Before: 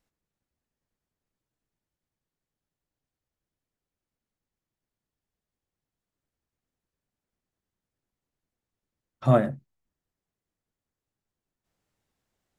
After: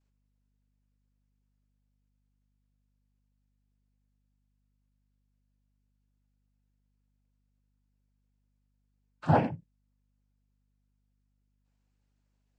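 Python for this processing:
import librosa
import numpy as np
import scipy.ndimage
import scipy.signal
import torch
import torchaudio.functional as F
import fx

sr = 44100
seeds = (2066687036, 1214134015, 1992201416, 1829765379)

y = fx.noise_vocoder(x, sr, seeds[0], bands=8)
y = fx.add_hum(y, sr, base_hz=50, snr_db=34)
y = F.gain(torch.from_numpy(y), -4.0).numpy()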